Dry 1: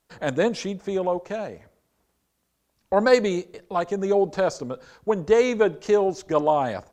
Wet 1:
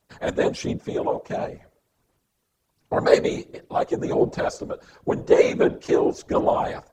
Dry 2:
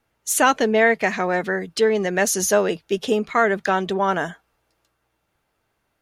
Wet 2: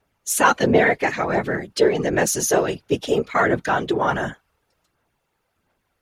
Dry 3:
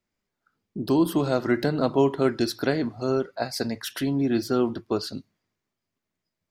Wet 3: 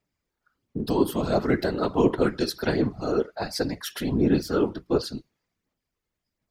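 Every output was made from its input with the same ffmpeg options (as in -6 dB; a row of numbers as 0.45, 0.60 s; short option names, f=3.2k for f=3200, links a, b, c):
-af "aphaser=in_gain=1:out_gain=1:delay=2.4:decay=0.38:speed=1.4:type=sinusoidal,afftfilt=real='hypot(re,im)*cos(2*PI*random(0))':imag='hypot(re,im)*sin(2*PI*random(1))':win_size=512:overlap=0.75,volume=5dB"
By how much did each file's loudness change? +0.5, 0.0, -0.5 LU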